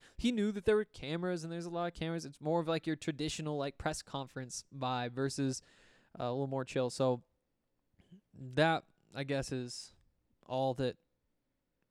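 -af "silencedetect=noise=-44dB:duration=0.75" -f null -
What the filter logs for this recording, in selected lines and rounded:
silence_start: 7.18
silence_end: 8.39 | silence_duration: 1.21
silence_start: 10.91
silence_end: 11.91 | silence_duration: 0.99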